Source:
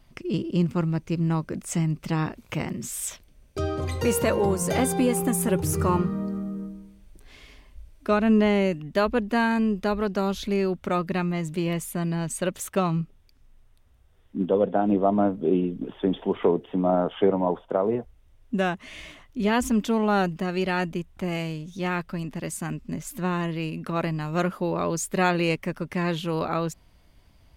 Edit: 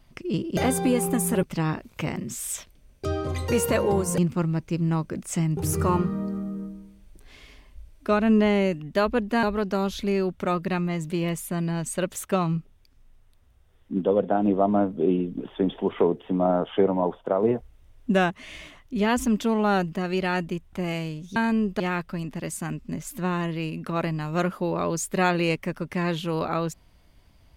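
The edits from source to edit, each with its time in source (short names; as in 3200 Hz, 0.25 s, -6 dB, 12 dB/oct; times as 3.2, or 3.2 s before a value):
0.57–1.96 swap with 4.71–5.57
9.43–9.87 move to 21.8
17.87–18.74 gain +3.5 dB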